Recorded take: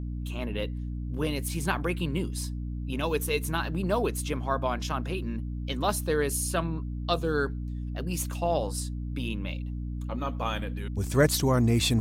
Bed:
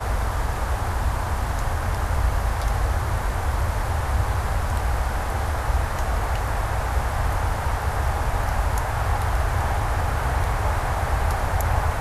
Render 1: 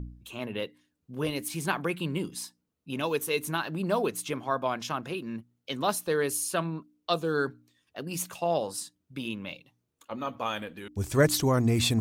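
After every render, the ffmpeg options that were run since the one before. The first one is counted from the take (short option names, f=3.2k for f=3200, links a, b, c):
-af "bandreject=f=60:t=h:w=4,bandreject=f=120:t=h:w=4,bandreject=f=180:t=h:w=4,bandreject=f=240:t=h:w=4,bandreject=f=300:t=h:w=4"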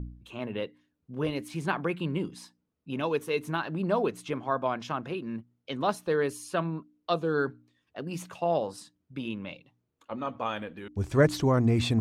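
-af "aemphasis=mode=reproduction:type=75fm"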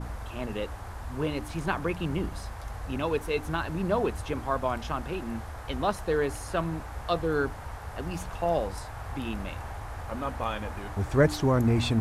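-filter_complex "[1:a]volume=-15dB[a];[0:a][a]amix=inputs=2:normalize=0"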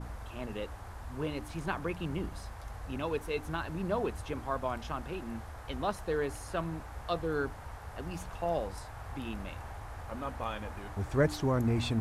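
-af "volume=-5.5dB"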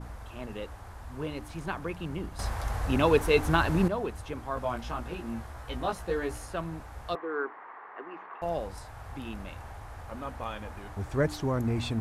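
-filter_complex "[0:a]asettb=1/sr,asplit=3[a][b][c];[a]atrim=end=4.554[d];[b]atrim=start=4.55:end=6.46,asetpts=PTS-STARTPTS,afade=t=in:d=0.004:c=qsin,afade=t=out:st=1.906:d=0.004:c=qsin,asplit=2[e][f];[f]adelay=17,volume=-2dB[g];[e][g]amix=inputs=2:normalize=0,atrim=end_sample=84231[h];[c]atrim=start=6.456[i];[d][h]acrossfade=d=0.004:c1=hsin:c2=qsin[j];[j][i]acrossfade=d=0.004:c1=qsin:c2=hsin,asettb=1/sr,asplit=3[k][l][m];[k]atrim=end=7.154[n];[l]atrim=start=7.15:end=8.42,asetpts=PTS-STARTPTS,afade=t=in:d=0.004:c=qsin,afade=t=out:st=1.266:d=0.004:c=qsin,highpass=f=320:w=0.5412,highpass=f=320:w=1.3066,equalizer=f=370:t=q:w=4:g=4,equalizer=f=570:t=q:w=4:g=-6,equalizer=f=1.1k:t=q:w=4:g=9,equalizer=f=1.9k:t=q:w=4:g=6,lowpass=f=2.3k:w=0.5412,lowpass=f=2.3k:w=1.3066[o];[m]atrim=start=8.416[p];[n][o]acrossfade=d=0.004:c1=hsin:c2=qsin[q];[q][p]acrossfade=d=0.004:c1=qsin:c2=hsin,asplit=3[r][s][t];[r]atrim=end=2.392[u];[s]atrim=start=2.388:end=3.882,asetpts=PTS-STARTPTS,volume=11.5dB[v];[t]atrim=start=3.878[w];[u][v]acrossfade=d=0.004:c1=hsin:c2=hsin[x];[x][w]acrossfade=d=0.004:c1=hsin:c2=hsin"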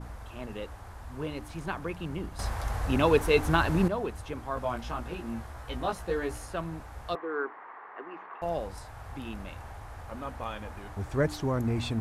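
-af anull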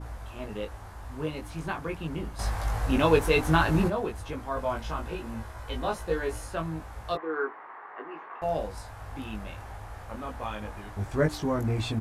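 -filter_complex "[0:a]asplit=2[a][b];[b]adelay=19,volume=-3dB[c];[a][c]amix=inputs=2:normalize=0"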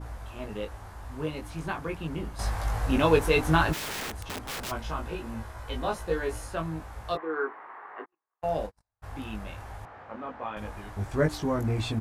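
-filter_complex "[0:a]asplit=3[a][b][c];[a]afade=t=out:st=3.72:d=0.02[d];[b]aeval=exprs='(mod(31.6*val(0)+1,2)-1)/31.6':c=same,afade=t=in:st=3.72:d=0.02,afade=t=out:st=4.7:d=0.02[e];[c]afade=t=in:st=4.7:d=0.02[f];[d][e][f]amix=inputs=3:normalize=0,asplit=3[g][h][i];[g]afade=t=out:st=8.04:d=0.02[j];[h]agate=range=-47dB:threshold=-35dB:ratio=16:release=100:detection=peak,afade=t=in:st=8.04:d=0.02,afade=t=out:st=9.02:d=0.02[k];[i]afade=t=in:st=9.02:d=0.02[l];[j][k][l]amix=inputs=3:normalize=0,asettb=1/sr,asplit=3[m][n][o];[m]atrim=end=9.854[p];[n]atrim=start=9.85:end=10.57,asetpts=PTS-STARTPTS,afade=t=in:d=0.004:c=qsin,afade=t=out:st=0.716:d=0.004:c=qsin,highpass=190,lowpass=2.4k[q];[o]atrim=start=10.566[r];[p][q]acrossfade=d=0.004:c1=hsin:c2=qsin[s];[s][r]acrossfade=d=0.004:c1=qsin:c2=hsin"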